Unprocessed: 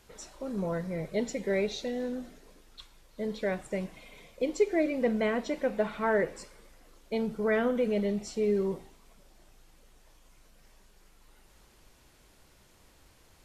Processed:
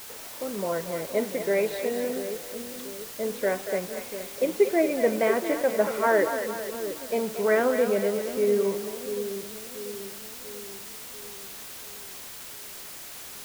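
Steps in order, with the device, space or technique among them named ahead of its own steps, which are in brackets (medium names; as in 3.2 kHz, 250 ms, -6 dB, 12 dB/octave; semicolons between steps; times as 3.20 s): wax cylinder (band-pass 320–2200 Hz; wow and flutter; white noise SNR 13 dB); two-band feedback delay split 470 Hz, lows 689 ms, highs 232 ms, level -8 dB; trim +6 dB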